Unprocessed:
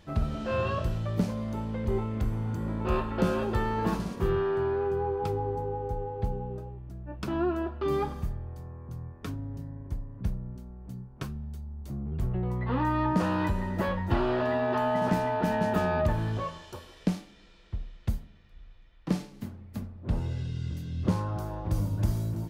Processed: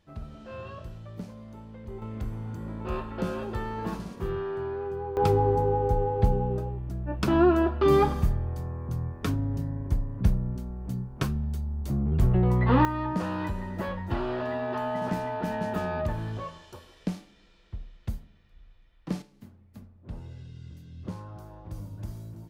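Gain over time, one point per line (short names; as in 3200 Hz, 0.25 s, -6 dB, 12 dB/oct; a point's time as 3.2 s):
-11.5 dB
from 2.02 s -4.5 dB
from 5.17 s +8 dB
from 12.85 s -3.5 dB
from 19.22 s -10.5 dB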